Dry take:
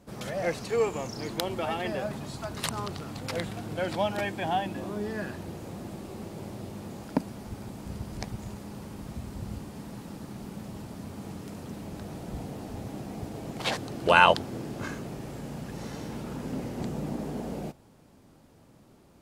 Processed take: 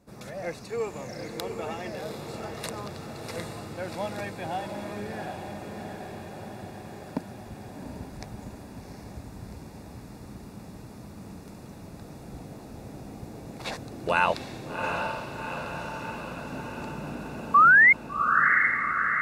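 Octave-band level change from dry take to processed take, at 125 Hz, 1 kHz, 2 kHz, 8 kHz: -3.0 dB, +3.5 dB, +10.0 dB, -3.0 dB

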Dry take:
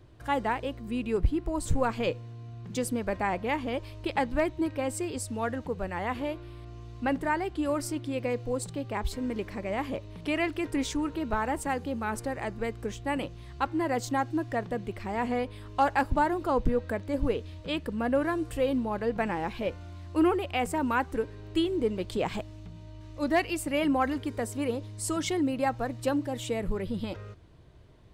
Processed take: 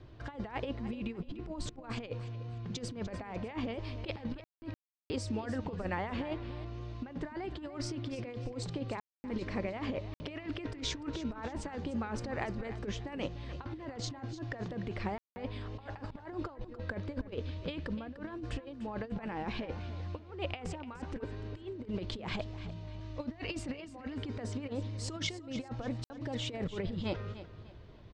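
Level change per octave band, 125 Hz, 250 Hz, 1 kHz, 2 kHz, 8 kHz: -2.0 dB, -8.5 dB, -14.0 dB, -10.0 dB, -9.5 dB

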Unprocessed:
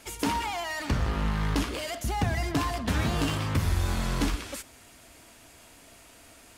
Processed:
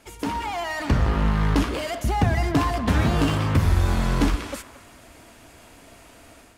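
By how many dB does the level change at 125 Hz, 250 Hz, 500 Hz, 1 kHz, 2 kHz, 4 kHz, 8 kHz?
+7.0 dB, +6.5 dB, +6.5 dB, +5.0 dB, +4.0 dB, +1.5 dB, -0.5 dB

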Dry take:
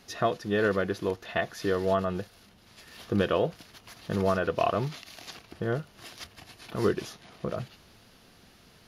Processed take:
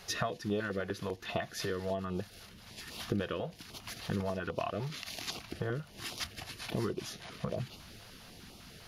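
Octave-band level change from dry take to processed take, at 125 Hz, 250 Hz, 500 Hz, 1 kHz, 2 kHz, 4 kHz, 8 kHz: -4.5 dB, -6.5 dB, -9.5 dB, -9.0 dB, -6.0 dB, 0.0 dB, +3.0 dB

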